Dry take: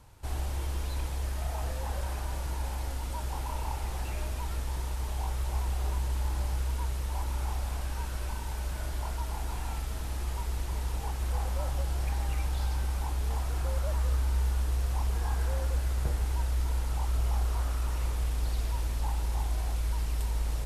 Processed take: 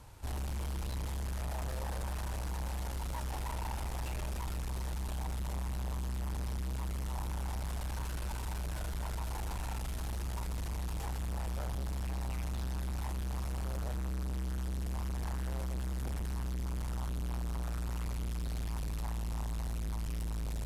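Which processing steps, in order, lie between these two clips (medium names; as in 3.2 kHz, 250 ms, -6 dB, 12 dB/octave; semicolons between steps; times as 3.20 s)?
valve stage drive 37 dB, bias 0.3; trim +3 dB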